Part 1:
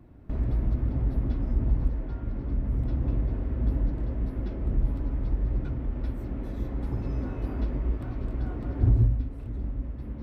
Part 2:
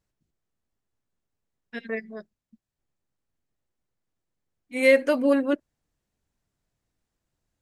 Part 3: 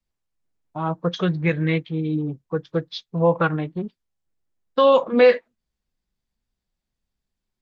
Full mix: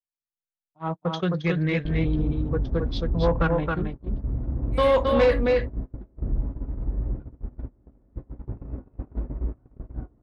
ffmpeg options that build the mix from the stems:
ffmpeg -i stem1.wav -i stem2.wav -i stem3.wav -filter_complex "[0:a]lowpass=1200,adelay=1550,volume=0dB[link_01];[1:a]volume=-12.5dB[link_02];[2:a]volume=-3dB,asplit=2[link_03][link_04];[link_04]volume=-4dB,aecho=0:1:270:1[link_05];[link_01][link_02][link_03][link_05]amix=inputs=4:normalize=0,agate=range=-27dB:threshold=-27dB:ratio=16:detection=peak,asoftclip=type=tanh:threshold=-12.5dB" out.wav

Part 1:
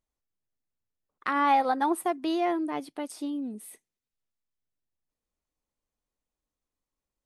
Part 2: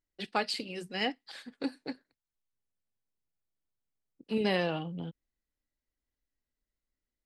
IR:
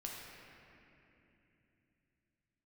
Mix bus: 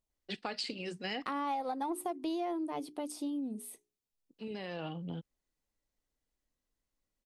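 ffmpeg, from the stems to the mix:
-filter_complex "[0:a]equalizer=frequency=1700:width_type=o:width=0.94:gain=-10,bandreject=frequency=60:width_type=h:width=6,bandreject=frequency=120:width_type=h:width=6,bandreject=frequency=180:width_type=h:width=6,bandreject=frequency=240:width_type=h:width=6,bandreject=frequency=300:width_type=h:width=6,bandreject=frequency=360:width_type=h:width=6,bandreject=frequency=420:width_type=h:width=6,aeval=exprs='0.168*(cos(1*acos(clip(val(0)/0.168,-1,1)))-cos(1*PI/2))+0.0119*(cos(3*acos(clip(val(0)/0.168,-1,1)))-cos(3*PI/2))+0.0075*(cos(5*acos(clip(val(0)/0.168,-1,1)))-cos(5*PI/2))':channel_layout=same,volume=-1dB,asplit=2[link_01][link_02];[1:a]lowpass=frequency=8400:width=0.5412,lowpass=frequency=8400:width=1.3066,alimiter=limit=-24dB:level=0:latency=1:release=88,adelay=100,volume=0dB[link_03];[link_02]apad=whole_len=324167[link_04];[link_03][link_04]sidechaincompress=threshold=-56dB:ratio=10:attack=6.8:release=1110[link_05];[link_01][link_05]amix=inputs=2:normalize=0,acompressor=threshold=-33dB:ratio=5"

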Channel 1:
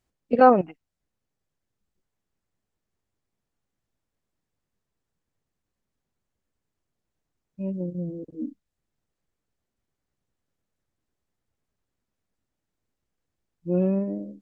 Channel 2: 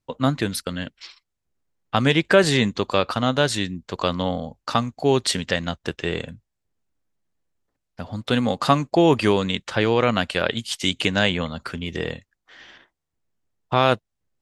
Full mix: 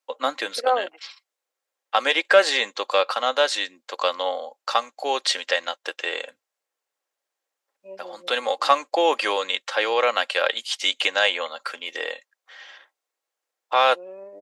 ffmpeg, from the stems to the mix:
ffmpeg -i stem1.wav -i stem2.wav -filter_complex "[0:a]adelay=250,volume=-5dB[link_01];[1:a]asubboost=boost=8:cutoff=70,aecho=1:1:3.7:0.43,volume=-4dB,asplit=2[link_02][link_03];[link_03]apad=whole_len=646590[link_04];[link_01][link_04]sidechaincompress=threshold=-30dB:ratio=5:attack=35:release=732[link_05];[link_05][link_02]amix=inputs=2:normalize=0,acrossover=split=7100[link_06][link_07];[link_07]acompressor=threshold=-53dB:ratio=4:attack=1:release=60[link_08];[link_06][link_08]amix=inputs=2:normalize=0,highpass=frequency=480:width=0.5412,highpass=frequency=480:width=1.3066,acontrast=38" out.wav

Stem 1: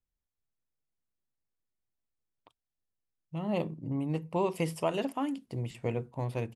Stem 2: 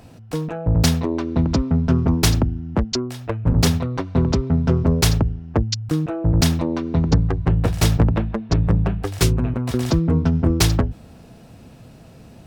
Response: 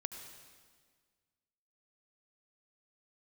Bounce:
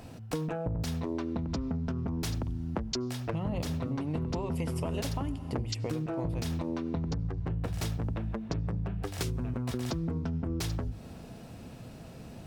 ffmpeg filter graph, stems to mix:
-filter_complex "[0:a]acompressor=threshold=-32dB:ratio=6,dynaudnorm=framelen=100:gausssize=21:maxgain=4dB,volume=2.5dB,asplit=2[link_01][link_02];[link_02]volume=-3.5dB[link_03];[1:a]bandreject=frequency=50:width_type=h:width=6,bandreject=frequency=100:width_type=h:width=6,bandreject=frequency=150:width_type=h:width=6,alimiter=limit=-14dB:level=0:latency=1:release=108,volume=-2.5dB,asplit=2[link_04][link_05];[link_05]volume=-16.5dB[link_06];[2:a]atrim=start_sample=2205[link_07];[link_03][link_06]amix=inputs=2:normalize=0[link_08];[link_08][link_07]afir=irnorm=-1:irlink=0[link_09];[link_01][link_04][link_09]amix=inputs=3:normalize=0,acompressor=threshold=-30dB:ratio=6"

